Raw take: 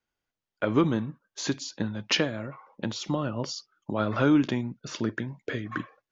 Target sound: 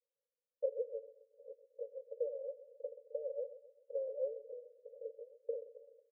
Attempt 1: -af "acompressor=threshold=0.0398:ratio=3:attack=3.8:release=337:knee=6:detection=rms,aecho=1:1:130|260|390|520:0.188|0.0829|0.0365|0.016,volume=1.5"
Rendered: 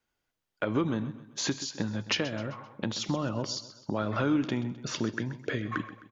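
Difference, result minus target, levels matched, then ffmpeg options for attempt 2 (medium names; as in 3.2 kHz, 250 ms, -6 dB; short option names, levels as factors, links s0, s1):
500 Hz band -8.0 dB
-af "acompressor=threshold=0.0398:ratio=3:attack=3.8:release=337:knee=6:detection=rms,asuperpass=centerf=510:order=12:qfactor=3.7,aecho=1:1:130|260|390|520:0.188|0.0829|0.0365|0.016,volume=1.5"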